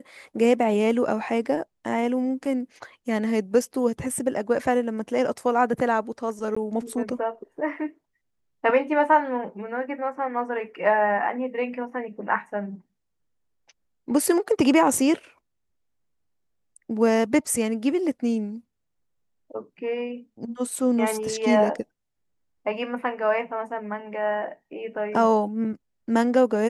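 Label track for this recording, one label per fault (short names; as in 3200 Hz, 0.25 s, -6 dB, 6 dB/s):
6.550000	6.570000	gap 15 ms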